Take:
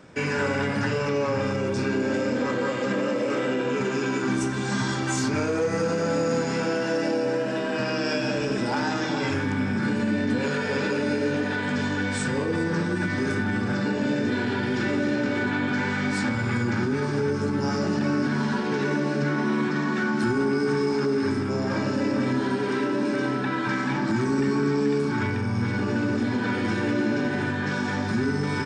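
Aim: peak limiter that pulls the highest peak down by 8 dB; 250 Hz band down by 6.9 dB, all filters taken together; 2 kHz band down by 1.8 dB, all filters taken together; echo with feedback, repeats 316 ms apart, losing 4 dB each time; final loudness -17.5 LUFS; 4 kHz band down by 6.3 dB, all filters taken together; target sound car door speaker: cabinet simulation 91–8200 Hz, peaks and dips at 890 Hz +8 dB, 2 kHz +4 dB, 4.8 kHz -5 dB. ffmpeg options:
-af "equalizer=f=250:t=o:g=-8.5,equalizer=f=2000:t=o:g=-3.5,equalizer=f=4000:t=o:g=-5.5,alimiter=level_in=1.12:limit=0.0631:level=0:latency=1,volume=0.891,highpass=91,equalizer=f=890:t=q:w=4:g=8,equalizer=f=2000:t=q:w=4:g=4,equalizer=f=4800:t=q:w=4:g=-5,lowpass=f=8200:w=0.5412,lowpass=f=8200:w=1.3066,aecho=1:1:316|632|948|1264|1580|1896|2212|2528|2844:0.631|0.398|0.25|0.158|0.0994|0.0626|0.0394|0.0249|0.0157,volume=4.22"

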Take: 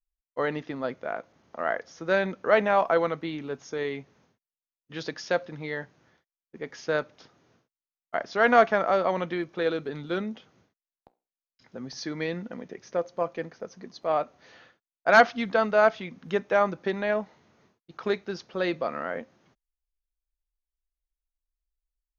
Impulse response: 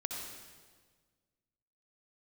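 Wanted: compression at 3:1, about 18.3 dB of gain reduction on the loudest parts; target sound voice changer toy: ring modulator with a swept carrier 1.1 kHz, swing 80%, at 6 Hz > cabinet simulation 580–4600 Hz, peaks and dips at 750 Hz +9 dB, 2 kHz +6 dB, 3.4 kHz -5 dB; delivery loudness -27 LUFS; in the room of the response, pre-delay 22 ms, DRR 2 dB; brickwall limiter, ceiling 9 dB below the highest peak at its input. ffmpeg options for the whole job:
-filter_complex "[0:a]acompressor=threshold=0.0126:ratio=3,alimiter=level_in=1.58:limit=0.0631:level=0:latency=1,volume=0.631,asplit=2[s0][s1];[1:a]atrim=start_sample=2205,adelay=22[s2];[s1][s2]afir=irnorm=-1:irlink=0,volume=0.668[s3];[s0][s3]amix=inputs=2:normalize=0,aeval=exprs='val(0)*sin(2*PI*1100*n/s+1100*0.8/6*sin(2*PI*6*n/s))':c=same,highpass=580,equalizer=f=750:t=q:w=4:g=9,equalizer=f=2000:t=q:w=4:g=6,equalizer=f=3400:t=q:w=4:g=-5,lowpass=f=4600:w=0.5412,lowpass=f=4600:w=1.3066,volume=4.47"

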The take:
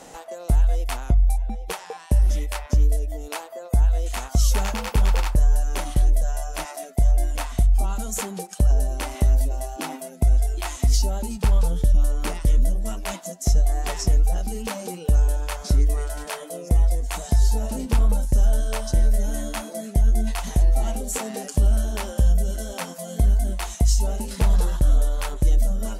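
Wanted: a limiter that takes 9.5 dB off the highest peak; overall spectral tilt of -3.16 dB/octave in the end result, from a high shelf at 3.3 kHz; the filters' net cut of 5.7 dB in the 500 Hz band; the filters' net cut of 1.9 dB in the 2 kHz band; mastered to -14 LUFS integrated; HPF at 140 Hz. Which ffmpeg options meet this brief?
-af "highpass=140,equalizer=f=500:t=o:g=-7.5,equalizer=f=2000:t=o:g=-4,highshelf=f=3300:g=5.5,volume=8.91,alimiter=limit=0.891:level=0:latency=1"

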